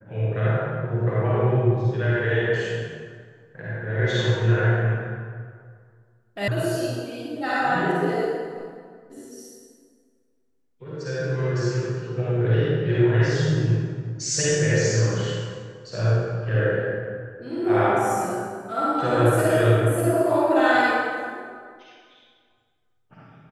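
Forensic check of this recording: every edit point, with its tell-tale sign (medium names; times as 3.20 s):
6.48 s: sound stops dead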